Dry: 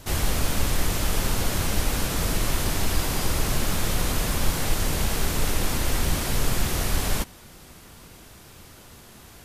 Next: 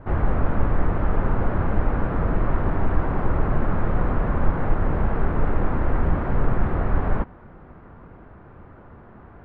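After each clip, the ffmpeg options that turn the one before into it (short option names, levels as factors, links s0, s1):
-af "lowpass=f=1500:w=0.5412,lowpass=f=1500:w=1.3066,volume=1.58"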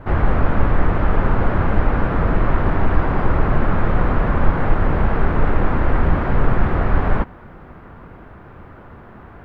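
-af "highshelf=f=2400:g=10.5,volume=1.68"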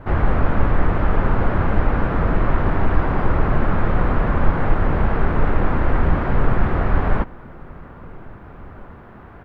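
-filter_complex "[0:a]asplit=2[s0][s1];[s1]adelay=1691,volume=0.0708,highshelf=f=4000:g=-38[s2];[s0][s2]amix=inputs=2:normalize=0,volume=0.891"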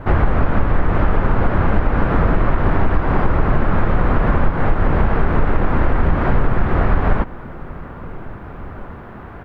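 -af "acompressor=threshold=0.158:ratio=6,volume=2.11"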